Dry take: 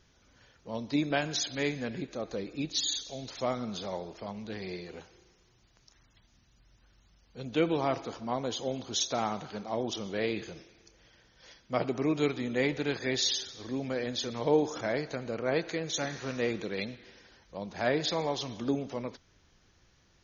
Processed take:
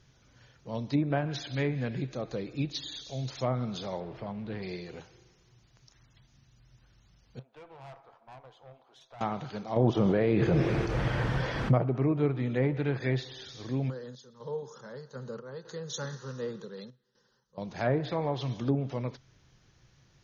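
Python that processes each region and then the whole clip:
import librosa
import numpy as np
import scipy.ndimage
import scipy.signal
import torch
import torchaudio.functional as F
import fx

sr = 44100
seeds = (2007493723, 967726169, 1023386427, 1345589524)

y = fx.chain(x, sr, fx.zero_step(step_db=-46.5),
    fx.air_absorb(metres=300.0), at=(4.0, 4.63))
y = fx.chain(y, sr, fx.ladder_bandpass(hz=1000.0, resonance_pct=30),
    fx.tube_stage(drive_db=45.0, bias=0.5), at=(7.39, 9.21))
y = fx.chain(y, sr, fx.high_shelf(hz=4800.0, db=10.0),
    fx.quant_dither(seeds[0], bits=10, dither='triangular'),
    fx.env_flatten(amount_pct=100), at=(9.76, 11.78))
y = fx.chain(y, sr, fx.low_shelf(hz=82.0, db=-11.0),
    fx.tremolo_random(seeds[1], hz=4.0, depth_pct=90),
    fx.fixed_phaser(hz=460.0, stages=8), at=(13.9, 17.58))
y = fx.env_lowpass_down(y, sr, base_hz=1300.0, full_db=-25.0)
y = fx.peak_eq(y, sr, hz=130.0, db=13.5, octaves=0.41)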